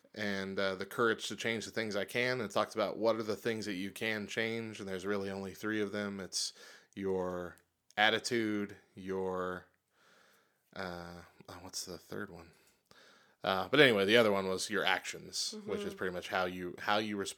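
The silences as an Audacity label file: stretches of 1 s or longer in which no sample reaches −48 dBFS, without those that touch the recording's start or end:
9.610000	10.730000	silence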